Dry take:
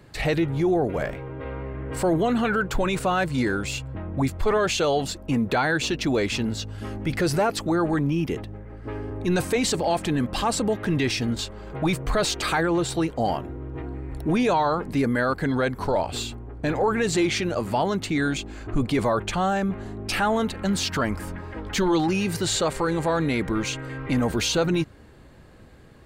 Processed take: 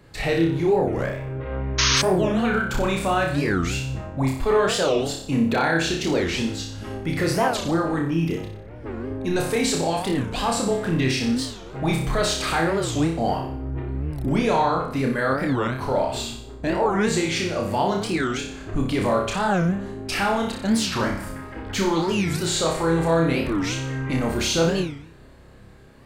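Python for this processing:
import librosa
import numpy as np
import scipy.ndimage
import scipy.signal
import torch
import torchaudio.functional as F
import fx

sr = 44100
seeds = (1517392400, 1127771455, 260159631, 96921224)

y = fx.room_flutter(x, sr, wall_m=5.2, rt60_s=0.57)
y = fx.spec_paint(y, sr, seeds[0], shape='noise', start_s=1.78, length_s=0.24, low_hz=940.0, high_hz=6700.0, level_db=-18.0)
y = fx.record_warp(y, sr, rpm=45.0, depth_cents=250.0)
y = y * 10.0 ** (-1.5 / 20.0)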